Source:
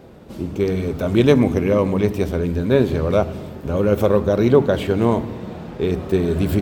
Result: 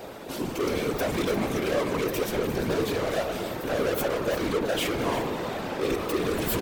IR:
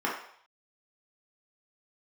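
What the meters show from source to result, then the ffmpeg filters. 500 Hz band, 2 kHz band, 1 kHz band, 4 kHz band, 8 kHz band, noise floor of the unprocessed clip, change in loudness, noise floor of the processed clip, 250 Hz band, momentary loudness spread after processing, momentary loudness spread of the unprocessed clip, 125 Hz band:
-8.5 dB, -1.0 dB, -2.5 dB, +1.0 dB, n/a, -36 dBFS, -9.0 dB, -35 dBFS, -10.5 dB, 4 LU, 13 LU, -14.0 dB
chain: -filter_complex "[0:a]equalizer=f=190:t=o:w=0.26:g=-6.5,alimiter=limit=-8.5dB:level=0:latency=1:release=165,asplit=2[a][b];[b]highpass=f=720:p=1,volume=28dB,asoftclip=type=tanh:threshold=-8.5dB[c];[a][c]amix=inputs=2:normalize=0,lowpass=f=6.9k:p=1,volume=-6dB,aecho=1:1:352:0.237,afftfilt=real='hypot(re,im)*cos(2*PI*random(0))':imag='hypot(re,im)*sin(2*PI*random(1))':win_size=512:overlap=0.75,highshelf=f=8.7k:g=12,volume=-6dB"

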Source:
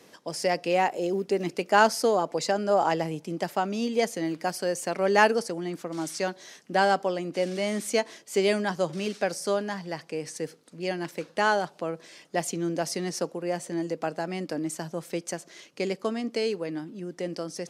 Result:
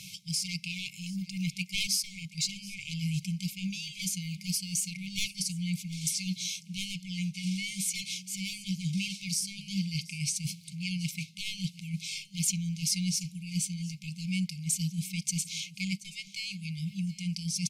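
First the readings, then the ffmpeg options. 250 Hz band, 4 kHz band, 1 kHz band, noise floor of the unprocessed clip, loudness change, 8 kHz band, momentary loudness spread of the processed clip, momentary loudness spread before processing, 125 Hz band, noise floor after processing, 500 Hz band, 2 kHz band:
-3.0 dB, +3.0 dB, under -40 dB, -55 dBFS, -5.0 dB, +5.5 dB, 7 LU, 11 LU, +5.0 dB, -51 dBFS, under -40 dB, -9.0 dB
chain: -af "aeval=exprs='0.562*sin(PI/2*3.98*val(0)/0.562)':c=same,areverse,acompressor=threshold=-21dB:ratio=10,areverse,afftfilt=real='re*(1-between(b*sr/4096,200,2100))':imag='im*(1-between(b*sr/4096,200,2100))':win_size=4096:overlap=0.75,aecho=1:1:728:0.106,volume=-2dB"

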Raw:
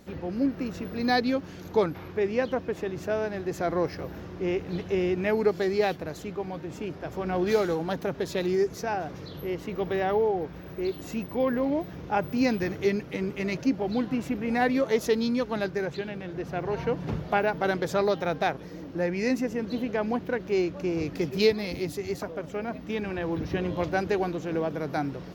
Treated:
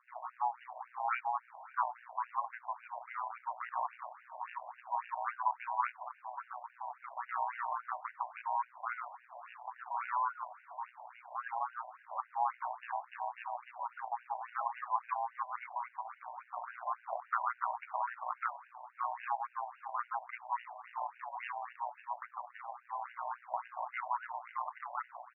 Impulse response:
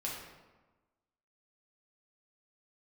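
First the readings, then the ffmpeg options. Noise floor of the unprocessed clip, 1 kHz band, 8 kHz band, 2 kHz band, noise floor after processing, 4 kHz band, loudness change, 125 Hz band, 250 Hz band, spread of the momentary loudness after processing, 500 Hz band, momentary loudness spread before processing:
-42 dBFS, -1.5 dB, under -30 dB, -10.5 dB, -64 dBFS, under -25 dB, -11.0 dB, under -40 dB, under -40 dB, 11 LU, -24.5 dB, 9 LU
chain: -af "aemphasis=mode=reproduction:type=75fm,aeval=exprs='val(0)*sin(2*PI*460*n/s)':c=same,highpass=f=410:t=q:w=0.5412,highpass=f=410:t=q:w=1.307,lowpass=f=2.8k:t=q:w=0.5176,lowpass=f=2.8k:t=q:w=0.7071,lowpass=f=2.8k:t=q:w=1.932,afreqshift=110,tremolo=f=120:d=0.919,aecho=1:1:546:0.075,afftfilt=real='re*between(b*sr/1024,740*pow(2100/740,0.5+0.5*sin(2*PI*3.6*pts/sr))/1.41,740*pow(2100/740,0.5+0.5*sin(2*PI*3.6*pts/sr))*1.41)':imag='im*between(b*sr/1024,740*pow(2100/740,0.5+0.5*sin(2*PI*3.6*pts/sr))/1.41,740*pow(2100/740,0.5+0.5*sin(2*PI*3.6*pts/sr))*1.41)':win_size=1024:overlap=0.75,volume=1dB"

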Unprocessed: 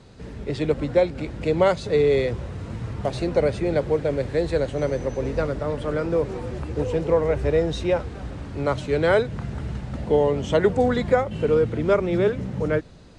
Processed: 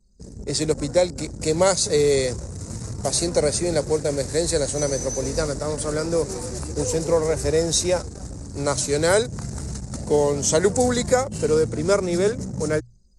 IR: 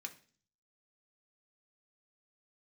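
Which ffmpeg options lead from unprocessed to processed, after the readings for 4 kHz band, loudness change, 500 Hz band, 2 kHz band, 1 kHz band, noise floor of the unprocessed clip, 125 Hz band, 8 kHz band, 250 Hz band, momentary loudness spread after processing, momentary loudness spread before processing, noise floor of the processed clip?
+9.0 dB, +1.0 dB, 0.0 dB, 0.0 dB, 0.0 dB, -37 dBFS, -0.5 dB, n/a, 0.0 dB, 11 LU, 11 LU, -40 dBFS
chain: -af "aexciter=amount=15.5:drive=5.6:freq=4.8k,anlmdn=10,bandreject=f=60:t=h:w=6,bandreject=f=120:t=h:w=6"

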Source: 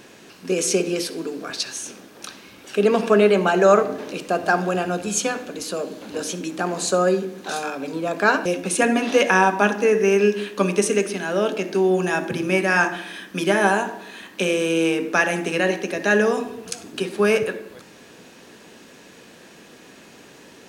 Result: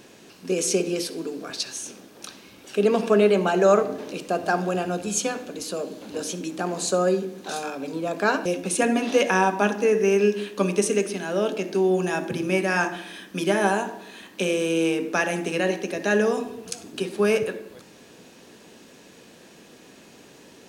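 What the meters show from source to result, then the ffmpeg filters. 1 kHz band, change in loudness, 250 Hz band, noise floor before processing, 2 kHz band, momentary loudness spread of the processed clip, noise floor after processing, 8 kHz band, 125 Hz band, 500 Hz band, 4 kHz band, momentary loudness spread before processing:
-4.0 dB, -3.0 dB, -2.0 dB, -47 dBFS, -5.5 dB, 13 LU, -50 dBFS, -2.0 dB, -2.0 dB, -2.5 dB, -3.0 dB, 14 LU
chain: -af "equalizer=f=1.6k:t=o:w=1.5:g=-4,volume=-2dB"

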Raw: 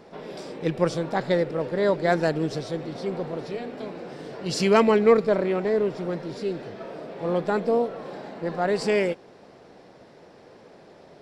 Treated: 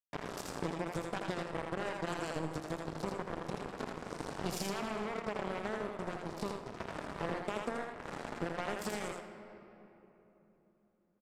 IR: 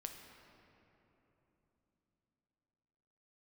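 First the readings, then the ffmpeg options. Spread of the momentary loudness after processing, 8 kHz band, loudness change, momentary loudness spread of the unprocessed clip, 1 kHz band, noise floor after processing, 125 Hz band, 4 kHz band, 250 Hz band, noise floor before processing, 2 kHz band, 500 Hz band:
6 LU, -6.0 dB, -15.0 dB, 18 LU, -10.0 dB, -71 dBFS, -11.5 dB, -10.0 dB, -13.5 dB, -51 dBFS, -10.0 dB, -17.0 dB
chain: -filter_complex "[0:a]agate=range=-33dB:threshold=-43dB:ratio=3:detection=peak,equalizer=f=125:t=o:w=1:g=6,equalizer=f=500:t=o:w=1:g=-5,equalizer=f=1k:t=o:w=1:g=3,equalizer=f=2k:t=o:w=1:g=-7,equalizer=f=4k:t=o:w=1:g=-6,equalizer=f=8k:t=o:w=1:g=8,alimiter=limit=-18.5dB:level=0:latency=1:release=73,acompressor=threshold=-40dB:ratio=8,acrusher=bits=5:mix=0:aa=0.5,aresample=32000,aresample=44100,asplit=2[a][b];[1:a]atrim=start_sample=2205,lowshelf=f=190:g=-8,adelay=82[c];[b][c]afir=irnorm=-1:irlink=0,volume=1.5dB[d];[a][d]amix=inputs=2:normalize=0,volume=5.5dB"

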